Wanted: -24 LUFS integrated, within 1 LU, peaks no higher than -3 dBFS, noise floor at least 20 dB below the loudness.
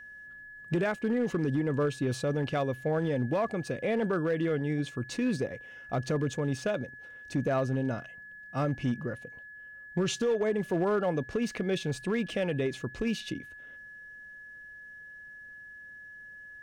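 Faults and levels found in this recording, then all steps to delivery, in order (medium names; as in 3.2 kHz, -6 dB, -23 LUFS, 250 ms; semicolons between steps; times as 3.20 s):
clipped samples 1.1%; clipping level -22.0 dBFS; steady tone 1.7 kHz; tone level -45 dBFS; loudness -31.0 LUFS; peak level -22.0 dBFS; loudness target -24.0 LUFS
-> clip repair -22 dBFS; band-stop 1.7 kHz, Q 30; trim +7 dB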